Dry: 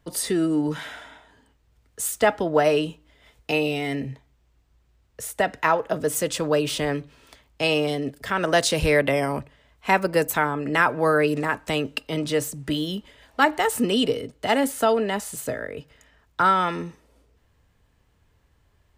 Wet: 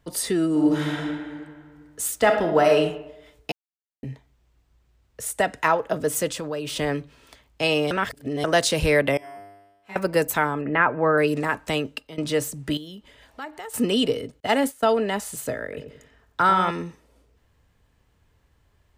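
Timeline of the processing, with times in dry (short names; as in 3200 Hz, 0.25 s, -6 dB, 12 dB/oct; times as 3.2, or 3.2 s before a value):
0.5–0.98 reverb throw, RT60 2 s, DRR -2.5 dB
2.18–2.8 reverb throw, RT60 0.82 s, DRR 4 dB
3.52–4.03 mute
5.26–5.68 bell 8700 Hz +7.5 dB
6.28–6.76 compressor 2.5:1, threshold -29 dBFS
7.91–8.44 reverse
9.17–9.96 resonator 100 Hz, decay 1.1 s, mix 100%
10.61–11.18 LPF 2500 Hz 24 dB/oct
11.76–12.18 fade out, to -16.5 dB
12.77–13.74 compressor 2:1, threshold -46 dBFS
14.4–15.01 expander -25 dBFS
15.64–16.71 darkening echo 90 ms, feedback 43%, low-pass 900 Hz, level -5 dB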